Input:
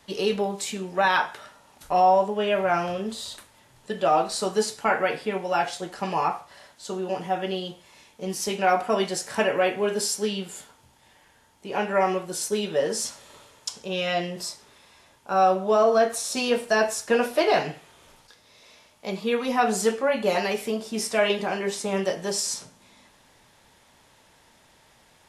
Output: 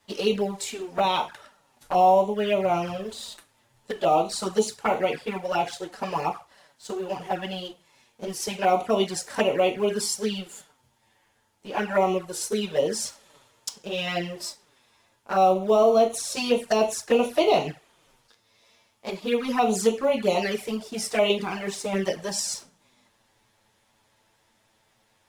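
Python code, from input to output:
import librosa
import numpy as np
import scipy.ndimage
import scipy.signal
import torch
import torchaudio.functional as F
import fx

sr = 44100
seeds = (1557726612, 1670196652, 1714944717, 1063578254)

y = fx.law_mismatch(x, sr, coded='A')
y = fx.env_flanger(y, sr, rest_ms=9.4, full_db=-20.0)
y = F.gain(torch.from_numpy(y), 3.0).numpy()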